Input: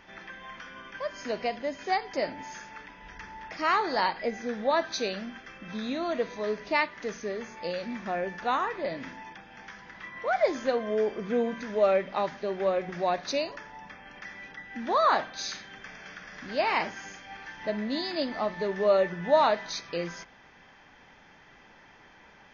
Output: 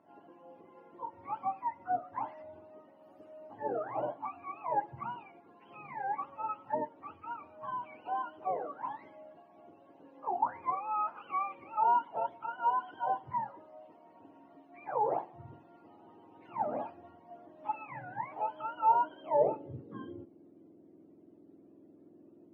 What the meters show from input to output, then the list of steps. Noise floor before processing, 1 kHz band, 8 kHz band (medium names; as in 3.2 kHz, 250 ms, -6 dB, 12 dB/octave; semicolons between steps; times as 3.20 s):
-55 dBFS, -1.5 dB, no reading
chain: spectrum inverted on a logarithmic axis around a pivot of 740 Hz; band-pass sweep 860 Hz -> 350 Hz, 18.82–19.98 s